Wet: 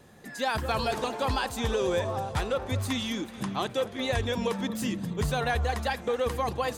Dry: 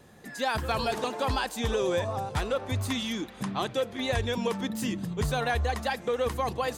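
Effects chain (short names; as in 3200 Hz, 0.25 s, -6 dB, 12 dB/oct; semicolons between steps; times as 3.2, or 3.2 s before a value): echo with dull and thin repeats by turns 0.217 s, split 1500 Hz, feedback 56%, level -13.5 dB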